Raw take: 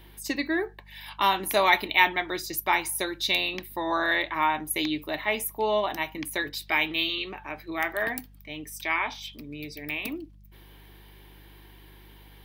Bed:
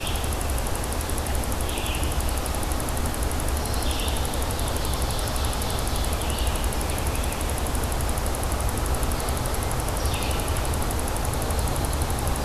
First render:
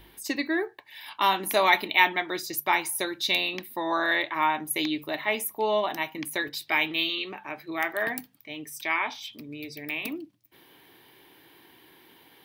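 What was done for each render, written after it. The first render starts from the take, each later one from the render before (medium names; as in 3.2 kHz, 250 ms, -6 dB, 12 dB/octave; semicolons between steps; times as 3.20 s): de-hum 50 Hz, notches 4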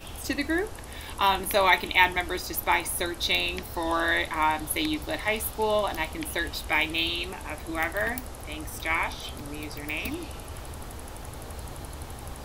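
add bed -14 dB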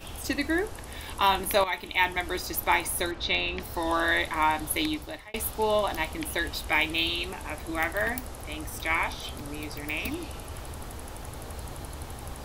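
1.64–2.38 s: fade in, from -13 dB; 3.11–3.60 s: low-pass 3.6 kHz; 4.83–5.34 s: fade out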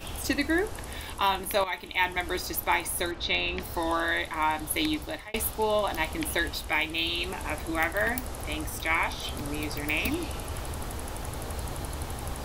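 gain riding within 4 dB 0.5 s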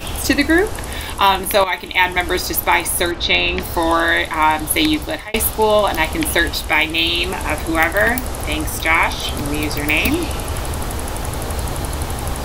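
trim +12 dB; peak limiter -1 dBFS, peak gain reduction 3 dB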